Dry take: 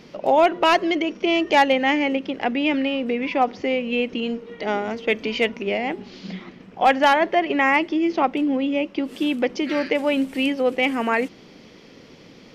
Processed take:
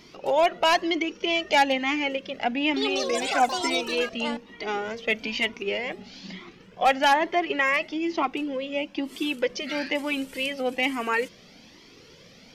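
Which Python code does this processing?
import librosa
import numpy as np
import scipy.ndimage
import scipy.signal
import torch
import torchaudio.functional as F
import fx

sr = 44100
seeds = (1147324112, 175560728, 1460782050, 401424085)

y = fx.high_shelf(x, sr, hz=2900.0, db=9.0)
y = fx.echo_pitch(y, sr, ms=193, semitones=6, count=3, db_per_echo=-3.0, at=(2.57, 4.84))
y = fx.comb_cascade(y, sr, direction='rising', hz=1.1)
y = y * librosa.db_to_amplitude(-1.0)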